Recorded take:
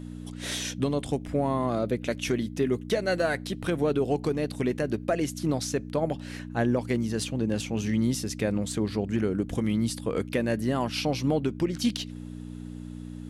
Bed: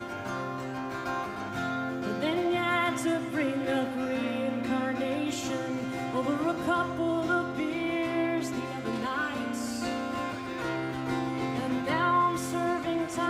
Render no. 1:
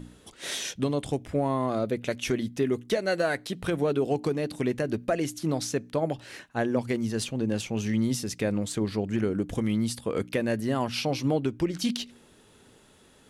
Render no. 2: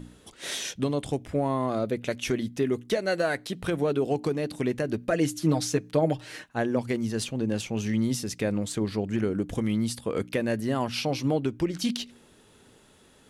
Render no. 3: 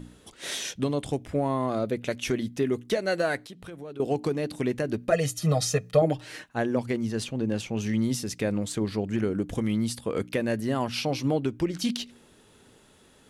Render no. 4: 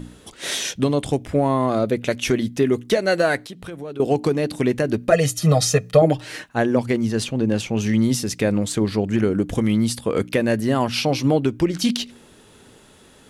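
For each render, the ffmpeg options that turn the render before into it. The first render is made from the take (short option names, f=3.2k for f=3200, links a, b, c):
-af "bandreject=f=60:t=h:w=4,bandreject=f=120:t=h:w=4,bandreject=f=180:t=h:w=4,bandreject=f=240:t=h:w=4,bandreject=f=300:t=h:w=4"
-filter_complex "[0:a]asettb=1/sr,asplit=3[a][b][c];[a]atrim=end=5.104[d];[b]atrim=start=5.1:end=6.44,asetpts=PTS-STARTPTS,afade=t=in:d=0.004:c=qsin,afade=t=out:st=1.336:d=0.004:c=qsin,aecho=1:1:6.5:0.83,atrim=end_sample=59094[e];[c]atrim=start=6.436[f];[d][e]acrossfade=d=0.004:c1=hsin:c2=qsin[g];[g][f]acrossfade=d=0.004:c1=qsin:c2=hsin"
-filter_complex "[0:a]asettb=1/sr,asplit=3[a][b][c];[a]atrim=end=3.424[d];[b]atrim=start=3.42:end=4,asetpts=PTS-STARTPTS,afade=t=in:d=0.004:c=qsin,afade=t=out:st=0.576:d=0.004:c=qsin,acompressor=threshold=-49dB:ratio=2:attack=3.2:release=140:knee=1:detection=peak[e];[c]atrim=start=3.996[f];[d][e]acrossfade=d=0.004:c1=hsin:c2=qsin[g];[g][f]acrossfade=d=0.004:c1=qsin:c2=hsin,asettb=1/sr,asplit=3[h][i][j];[h]atrim=end=5.124[k];[i]atrim=start=5.12:end=6.02,asetpts=PTS-STARTPTS,afade=t=in:d=0.004:c=qsin,afade=t=out:st=0.896:d=0.004:c=qsin,aecho=1:1:1.6:0.91,atrim=end_sample=39690[l];[j]atrim=start=6.016[m];[k][l]acrossfade=d=0.004:c1=hsin:c2=qsin[n];[n][m]acrossfade=d=0.004:c1=qsin:c2=hsin,asettb=1/sr,asplit=3[o][p][q];[o]atrim=end=6.864[r];[p]atrim=start=6.86:end=7.81,asetpts=PTS-STARTPTS,afade=t=in:d=0.004:c=qsin,afade=t=out:st=0.946:d=0.004:c=qsin,highshelf=f=5.3k:g=-5[s];[q]atrim=start=7.806[t];[r][s]acrossfade=d=0.004:c1=hsin:c2=qsin[u];[u][t]acrossfade=d=0.004:c1=qsin:c2=hsin"
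-af "volume=7.5dB,alimiter=limit=-3dB:level=0:latency=1"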